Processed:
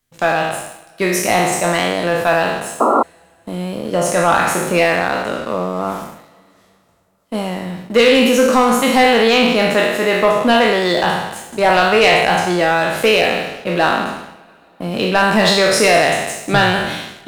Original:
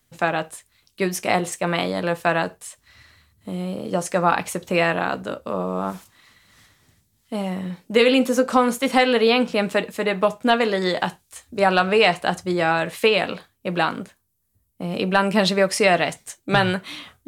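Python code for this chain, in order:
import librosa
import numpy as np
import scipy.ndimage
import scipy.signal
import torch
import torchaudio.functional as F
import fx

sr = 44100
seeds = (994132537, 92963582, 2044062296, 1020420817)

y = fx.spec_trails(x, sr, decay_s=1.08)
y = fx.leveller(y, sr, passes=2)
y = fx.rev_double_slope(y, sr, seeds[0], early_s=0.33, late_s=3.3, knee_db=-19, drr_db=12.5)
y = fx.spec_paint(y, sr, seeds[1], shape='noise', start_s=2.8, length_s=0.23, low_hz=210.0, high_hz=1400.0, level_db=-9.0)
y = y * 10.0 ** (-3.5 / 20.0)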